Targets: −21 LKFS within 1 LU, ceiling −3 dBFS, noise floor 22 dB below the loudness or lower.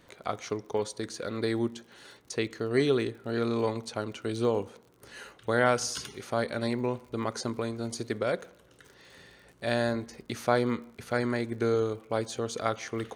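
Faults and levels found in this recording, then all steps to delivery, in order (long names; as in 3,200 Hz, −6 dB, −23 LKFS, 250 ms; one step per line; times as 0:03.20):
crackle rate 54 per second; integrated loudness −31.0 LKFS; sample peak −9.0 dBFS; target loudness −21.0 LKFS
→ click removal
level +10 dB
brickwall limiter −3 dBFS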